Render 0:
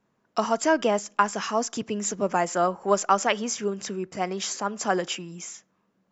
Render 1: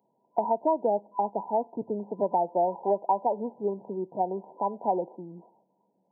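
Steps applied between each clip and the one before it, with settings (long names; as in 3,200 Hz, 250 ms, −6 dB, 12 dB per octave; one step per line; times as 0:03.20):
brick-wall band-pass 100–1,000 Hz
spectral tilt +4.5 dB per octave
downward compressor 3 to 1, threshold −28 dBFS, peak gain reduction 7 dB
level +6 dB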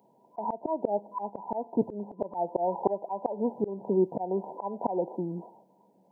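volume swells 298 ms
level +9 dB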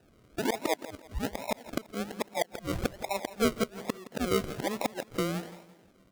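sample-and-hold swept by an LFO 40×, swing 60% 1.2 Hz
gate with flip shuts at −20 dBFS, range −27 dB
repeating echo 168 ms, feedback 36%, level −16 dB
level +2.5 dB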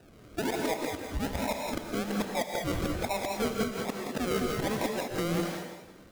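downward compressor, threshold −31 dBFS, peak gain reduction 10 dB
soft clipping −31 dBFS, distortion −12 dB
reverb whose tail is shaped and stops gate 230 ms rising, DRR 1.5 dB
level +6.5 dB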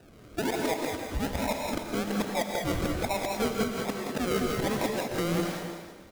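single-tap delay 301 ms −12.5 dB
level +1.5 dB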